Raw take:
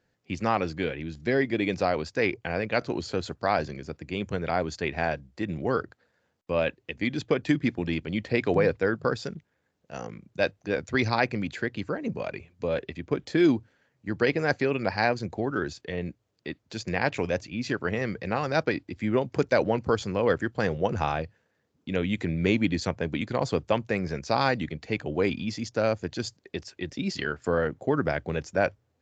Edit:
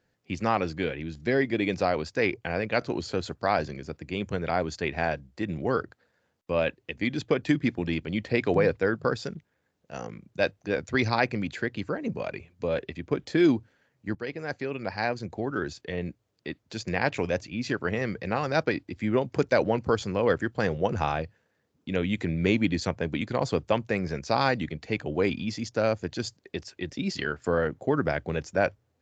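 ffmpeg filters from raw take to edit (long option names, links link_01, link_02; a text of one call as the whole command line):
ffmpeg -i in.wav -filter_complex "[0:a]asplit=2[link_01][link_02];[link_01]atrim=end=14.15,asetpts=PTS-STARTPTS,afade=type=out:start_time=14.146:duration=0.004:curve=hsin:silence=0.237137[link_03];[link_02]atrim=start=14.15,asetpts=PTS-STARTPTS,afade=type=in:duration=1.75:silence=0.237137[link_04];[link_03][link_04]concat=n=2:v=0:a=1" out.wav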